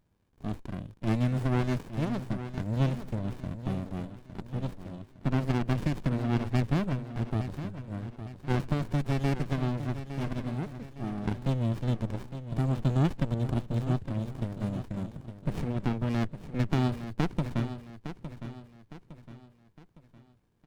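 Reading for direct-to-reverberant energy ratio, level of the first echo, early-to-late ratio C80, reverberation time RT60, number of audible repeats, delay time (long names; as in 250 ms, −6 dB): no reverb audible, −11.0 dB, no reverb audible, no reverb audible, 4, 860 ms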